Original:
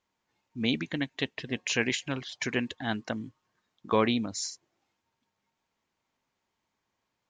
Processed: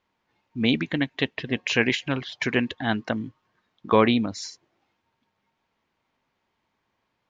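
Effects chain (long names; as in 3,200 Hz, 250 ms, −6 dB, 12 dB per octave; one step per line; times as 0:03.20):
low-pass filter 3,900 Hz 12 dB per octave
level +6.5 dB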